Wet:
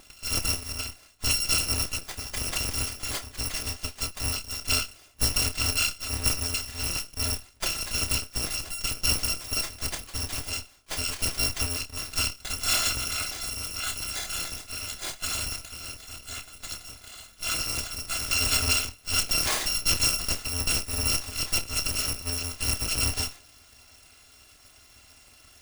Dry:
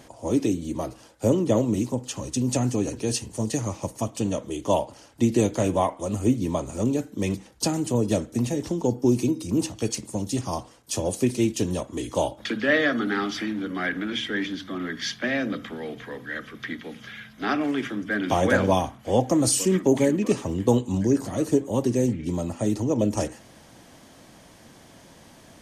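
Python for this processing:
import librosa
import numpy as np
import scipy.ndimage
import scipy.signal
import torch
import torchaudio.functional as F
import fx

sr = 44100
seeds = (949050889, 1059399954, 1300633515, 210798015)

y = fx.bit_reversed(x, sr, seeds[0], block=256)
y = fx.doubler(y, sr, ms=28.0, db=-8)
y = fx.running_max(y, sr, window=3)
y = F.gain(torch.from_numpy(y), -2.0).numpy()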